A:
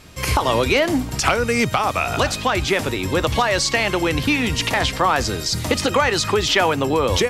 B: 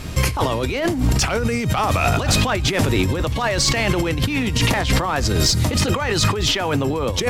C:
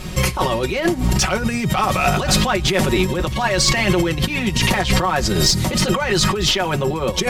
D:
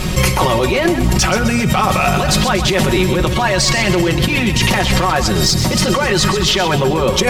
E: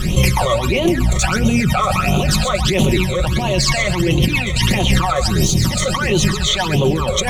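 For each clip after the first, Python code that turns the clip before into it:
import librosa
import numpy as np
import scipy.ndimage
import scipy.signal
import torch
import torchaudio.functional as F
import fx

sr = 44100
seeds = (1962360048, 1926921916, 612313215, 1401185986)

y1 = fx.low_shelf(x, sr, hz=250.0, db=8.5)
y1 = fx.over_compress(y1, sr, threshold_db=-23.0, ratio=-1.0)
y1 = fx.leveller(y1, sr, passes=1)
y2 = y1 + 0.73 * np.pad(y1, (int(5.4 * sr / 1000.0), 0))[:len(y1)]
y3 = fx.rider(y2, sr, range_db=10, speed_s=0.5)
y3 = fx.echo_feedback(y3, sr, ms=129, feedback_pct=55, wet_db=-11)
y3 = fx.env_flatten(y3, sr, amount_pct=50)
y3 = y3 * librosa.db_to_amplitude(1.0)
y4 = fx.phaser_stages(y3, sr, stages=12, low_hz=270.0, high_hz=1700.0, hz=1.5, feedback_pct=35)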